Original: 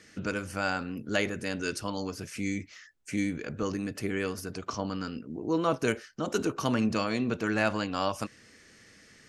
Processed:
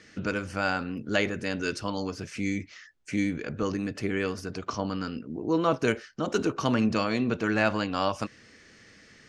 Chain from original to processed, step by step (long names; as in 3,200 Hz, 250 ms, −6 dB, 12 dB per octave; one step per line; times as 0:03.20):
low-pass filter 6,000 Hz 12 dB per octave
level +2.5 dB